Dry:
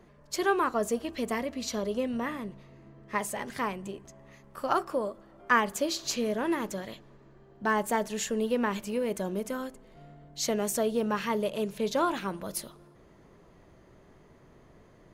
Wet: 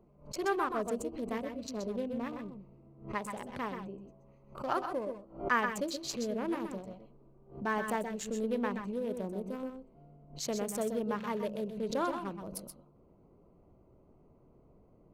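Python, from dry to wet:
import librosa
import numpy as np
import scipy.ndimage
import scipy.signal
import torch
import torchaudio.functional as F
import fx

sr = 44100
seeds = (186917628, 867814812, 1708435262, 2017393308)

p1 = fx.wiener(x, sr, points=25)
p2 = p1 + fx.echo_multitap(p1, sr, ms=(124, 128, 139), db=(-12.5, -8.5, -18.5), dry=0)
p3 = fx.pre_swell(p2, sr, db_per_s=140.0)
y = p3 * librosa.db_to_amplitude(-5.5)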